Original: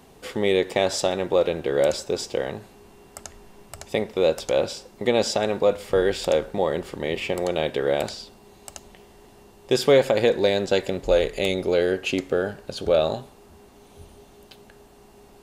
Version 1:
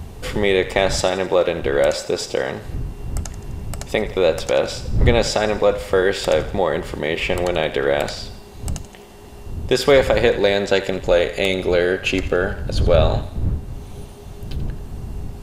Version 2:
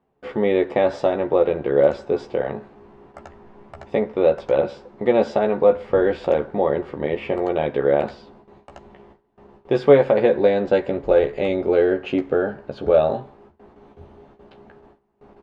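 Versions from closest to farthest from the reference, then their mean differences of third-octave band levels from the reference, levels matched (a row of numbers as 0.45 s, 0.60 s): 1, 2; 4.0 dB, 5.5 dB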